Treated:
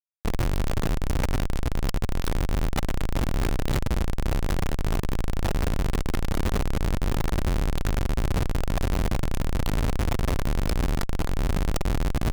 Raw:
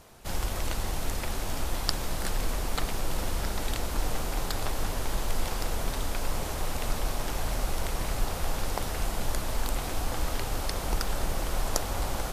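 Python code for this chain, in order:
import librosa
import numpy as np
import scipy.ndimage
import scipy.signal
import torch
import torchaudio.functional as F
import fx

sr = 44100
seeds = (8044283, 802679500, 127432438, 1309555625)

y = fx.halfwave_hold(x, sr)
y = fx.rider(y, sr, range_db=10, speed_s=0.5)
y = fx.schmitt(y, sr, flips_db=-28.5)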